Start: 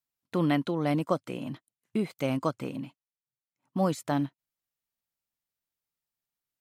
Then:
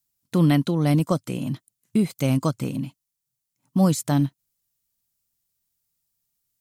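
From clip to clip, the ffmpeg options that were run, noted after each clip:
ffmpeg -i in.wav -af "bass=frequency=250:gain=12,treble=frequency=4000:gain=13,volume=1.5dB" out.wav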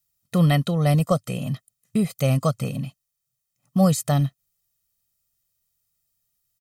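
ffmpeg -i in.wav -af "aecho=1:1:1.6:0.76" out.wav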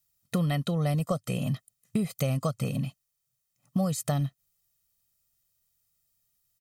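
ffmpeg -i in.wav -af "acompressor=threshold=-24dB:ratio=6" out.wav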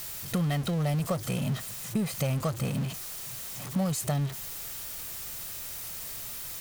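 ffmpeg -i in.wav -af "aeval=exprs='val(0)+0.5*0.0335*sgn(val(0))':channel_layout=same,volume=-3dB" out.wav

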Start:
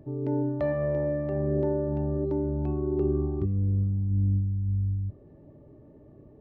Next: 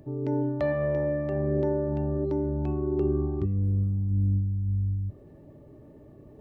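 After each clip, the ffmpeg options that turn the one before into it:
ffmpeg -i in.wav -af "highshelf=frequency=2000:gain=9.5,areverse,acompressor=mode=upward:threshold=-45dB:ratio=2.5,areverse" out.wav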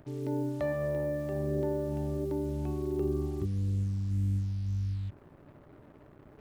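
ffmpeg -i in.wav -af "acrusher=bits=7:mix=0:aa=0.5,volume=-5dB" out.wav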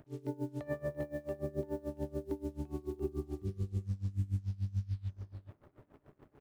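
ffmpeg -i in.wav -filter_complex "[0:a]asplit=2[link_01][link_02];[link_02]aecho=0:1:399|420:0.316|0.112[link_03];[link_01][link_03]amix=inputs=2:normalize=0,aeval=exprs='val(0)*pow(10,-22*(0.5-0.5*cos(2*PI*6.9*n/s))/20)':channel_layout=same,volume=-1.5dB" out.wav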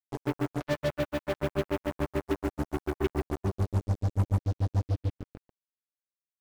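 ffmpeg -i in.wav -af "acrusher=bits=5:mix=0:aa=0.5,volume=7.5dB" out.wav

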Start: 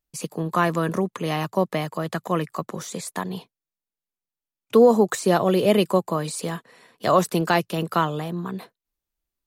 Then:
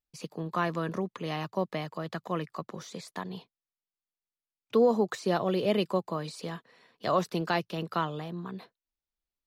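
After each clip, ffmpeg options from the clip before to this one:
ffmpeg -i in.wav -af "highshelf=frequency=6400:width_type=q:width=1.5:gain=-8.5,volume=-8.5dB" out.wav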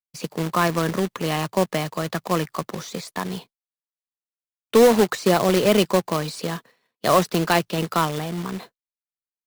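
ffmpeg -i in.wav -af "agate=range=-33dB:threshold=-47dB:ratio=3:detection=peak,acrusher=bits=2:mode=log:mix=0:aa=0.000001,volume=9dB" out.wav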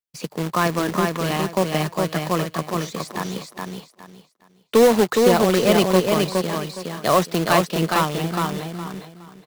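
ffmpeg -i in.wav -af "aecho=1:1:415|830|1245|1660:0.668|0.167|0.0418|0.0104" out.wav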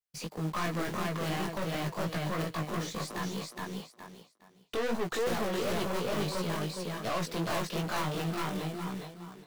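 ffmpeg -i in.wav -af "aeval=exprs='(tanh(22.4*val(0)+0.25)-tanh(0.25))/22.4':channel_layout=same,flanger=delay=16.5:depth=3.7:speed=2.8" out.wav

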